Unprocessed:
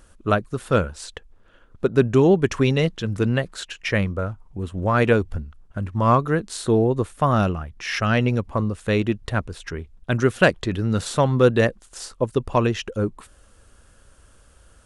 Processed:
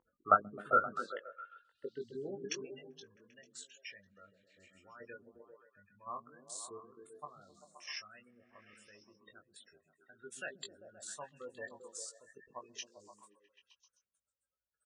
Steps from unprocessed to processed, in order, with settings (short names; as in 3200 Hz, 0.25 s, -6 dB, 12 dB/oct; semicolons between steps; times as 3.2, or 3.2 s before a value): in parallel at -9 dB: bit-crush 4-bit; on the sum: level quantiser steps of 14 dB; spectral gate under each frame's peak -15 dB strong; doubler 20 ms -5 dB; on a send: delay with a stepping band-pass 0.131 s, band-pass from 180 Hz, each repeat 0.7 oct, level -0.5 dB; on the sum: band-pass sweep 970 Hz -> 7400 Hz, 0.14–3.31